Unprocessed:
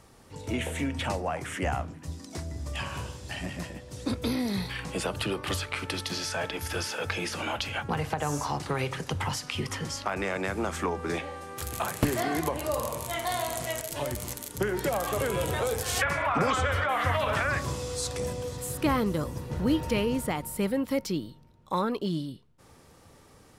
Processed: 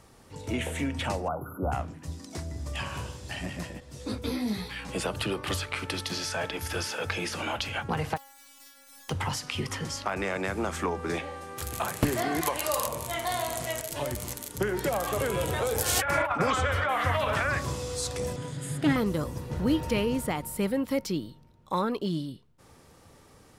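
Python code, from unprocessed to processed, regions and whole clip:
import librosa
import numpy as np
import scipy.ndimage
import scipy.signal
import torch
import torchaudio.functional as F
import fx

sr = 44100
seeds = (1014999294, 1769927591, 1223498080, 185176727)

y = fx.chain(x, sr, fx.brickwall_bandstop(low_hz=1500.0, high_hz=11000.0),
    fx.high_shelf(hz=11000.0, db=11.5), at=(1.28, 1.72))
y = fx.chain(y, sr, fx.doubler(ms=28.0, db=-6.5),
    fx.ensemble(), at=(3.8, 4.89))
y = fx.spec_flatten(y, sr, power=0.1, at=(8.16, 9.08), fade=0.02)
y = fx.over_compress(y, sr, threshold_db=-36.0, ratio=-1.0, at=(8.16, 9.08), fade=0.02)
y = fx.stiff_resonator(y, sr, f0_hz=270.0, decay_s=0.83, stiffness=0.002, at=(8.16, 9.08), fade=0.02)
y = fx.chain(y, sr, fx.tilt_shelf(db=-8.0, hz=650.0),
    fx.overload_stage(gain_db=13.0), at=(12.41, 12.87))
y = fx.chain(y, sr, fx.high_shelf(hz=11000.0, db=10.0),
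    fx.small_body(hz=(330.0, 590.0, 850.0, 1400.0), ring_ms=75, db=10),
    fx.over_compress(threshold_db=-26.0, ratio=-0.5), at=(15.75, 16.4))
y = fx.chain(y, sr, fx.lower_of_two(delay_ms=0.6),
    fx.cabinet(low_hz=120.0, low_slope=12, high_hz=9900.0, hz=(150.0, 280.0, 1100.0, 5600.0), db=(10, 3, -7, -9)),
    fx.comb(ms=7.3, depth=0.36), at=(18.36, 18.96))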